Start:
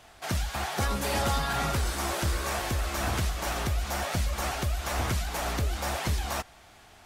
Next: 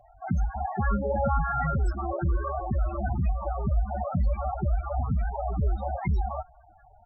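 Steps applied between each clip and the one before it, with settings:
spectral peaks only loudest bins 8
comb filter 5.2 ms, depth 41%
level +5 dB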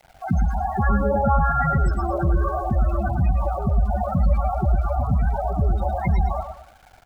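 centre clipping without the shift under −52 dBFS
repeating echo 111 ms, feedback 32%, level −7 dB
level +5.5 dB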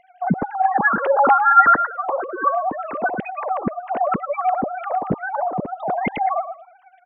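three sine waves on the formant tracks

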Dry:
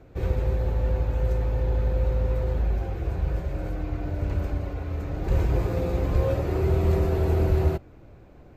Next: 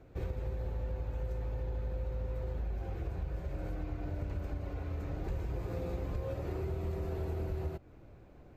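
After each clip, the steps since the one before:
downward compressor, threshold −27 dBFS, peak gain reduction 11 dB
level −6 dB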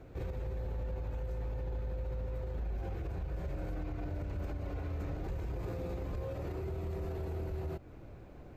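brickwall limiter −35.5 dBFS, peak gain reduction 10 dB
level +4.5 dB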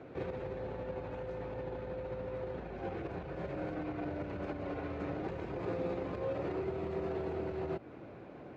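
band-pass filter 190–3,400 Hz
level +6 dB

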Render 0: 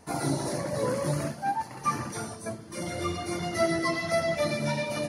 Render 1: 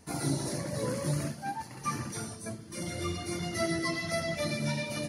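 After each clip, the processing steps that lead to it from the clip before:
parametric band 810 Hz −8 dB 2.2 octaves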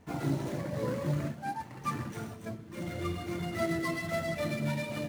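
running median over 9 samples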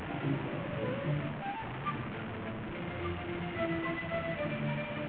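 linear delta modulator 16 kbit/s, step −31 dBFS
level −2.5 dB

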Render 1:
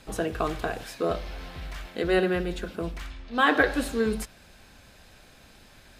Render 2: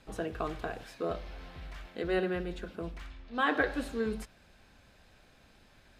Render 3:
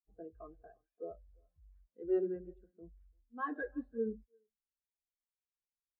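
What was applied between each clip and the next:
high-shelf EQ 5,800 Hz −8.5 dB; level −7 dB
far-end echo of a speakerphone 340 ms, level −13 dB; hard clipping −25.5 dBFS, distortion −14 dB; every bin expanded away from the loudest bin 2.5 to 1; level +2 dB

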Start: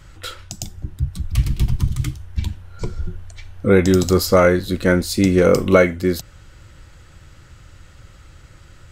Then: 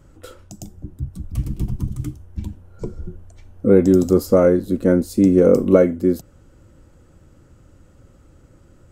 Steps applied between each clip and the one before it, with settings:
octave-band graphic EQ 250/500/2,000/4,000 Hz +11/+6/−7/−9 dB
level −7 dB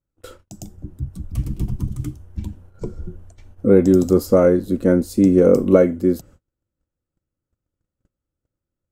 noise gate −42 dBFS, range −34 dB

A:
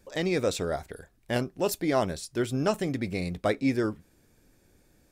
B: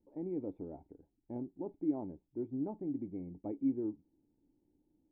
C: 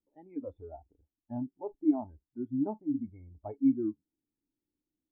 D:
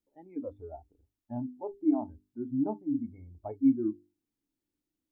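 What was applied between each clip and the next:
formant resonators in series u; level −3 dB
noise reduction from a noise print of the clip's start 23 dB; level +7.5 dB
mains-hum notches 50/100/150/200/250/300/350/400 Hz; level +2 dB

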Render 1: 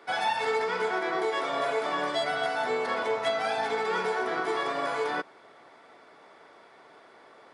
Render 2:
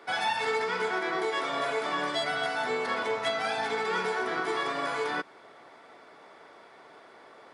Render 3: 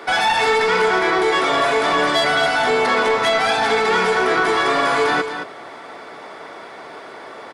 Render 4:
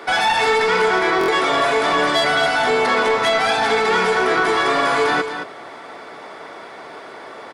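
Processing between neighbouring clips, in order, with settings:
dynamic equaliser 610 Hz, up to −5 dB, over −39 dBFS, Q 0.98; level +1.5 dB
in parallel at +2 dB: brickwall limiter −24.5 dBFS, peak gain reduction 7 dB; on the sum: soft clipping −19 dBFS, distortion −18 dB; single-tap delay 221 ms −9 dB; level +8.5 dB
buffer that repeats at 0:01.19, samples 1,024, times 3

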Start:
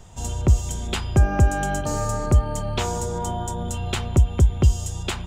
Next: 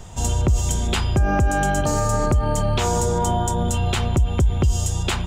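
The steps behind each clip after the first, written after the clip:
brickwall limiter −18 dBFS, peak gain reduction 11 dB
level +7 dB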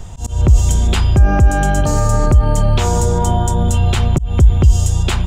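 low-shelf EQ 120 Hz +9 dB
volume swells 189 ms
level +2.5 dB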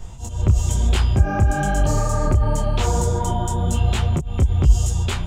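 micro pitch shift up and down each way 36 cents
level −2 dB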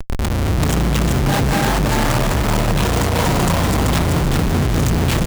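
comparator with hysteresis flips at −31.5 dBFS
echo with shifted repeats 384 ms, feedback 33%, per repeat +79 Hz, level −3 dB

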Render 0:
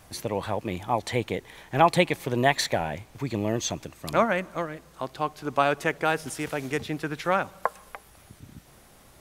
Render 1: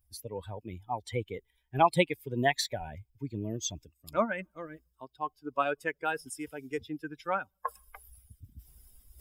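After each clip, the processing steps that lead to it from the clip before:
spectral dynamics exaggerated over time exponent 2
reversed playback
upward compression, threshold −33 dBFS
reversed playback
level −2 dB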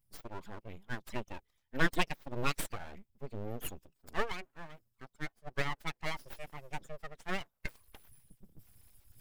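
full-wave rectification
level −3 dB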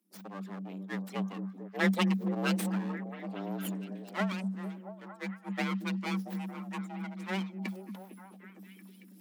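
frequency shifter +190 Hz
echo through a band-pass that steps 227 ms, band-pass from 230 Hz, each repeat 0.7 octaves, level −3 dB

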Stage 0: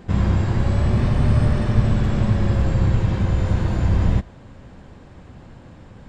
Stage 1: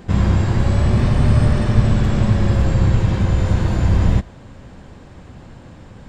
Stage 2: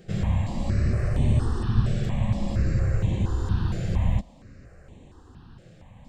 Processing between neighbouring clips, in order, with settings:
high-shelf EQ 5,000 Hz +5 dB; level +3 dB
step-sequenced phaser 4.3 Hz 260–5,000 Hz; level −7 dB

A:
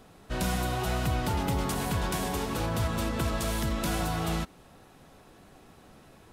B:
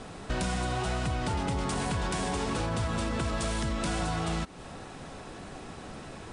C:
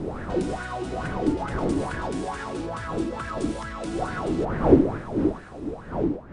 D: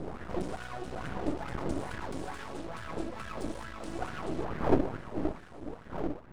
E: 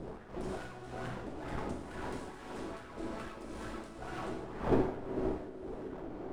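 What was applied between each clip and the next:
Chebyshev low-pass filter 9,900 Hz, order 10; in parallel at +2.5 dB: brickwall limiter −28 dBFS, peak gain reduction 9 dB; on the sum: downward compressor 3 to 1, threshold −35 dBFS, peak gain reduction 10.5 dB; level +4.5 dB
fade-out on the ending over 0.88 s; wind on the microphone 300 Hz −26 dBFS; auto-filter bell 2.3 Hz 280–1,700 Hz +17 dB; level −7 dB
half-wave rectification; level −5 dB
on a send: feedback echo with a band-pass in the loop 376 ms, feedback 80%, band-pass 340 Hz, level −10 dB; on the sum: dense smooth reverb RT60 1.7 s, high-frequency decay 0.95×, DRR −1 dB; amplitude tremolo 1.9 Hz, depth 61%; level −5 dB

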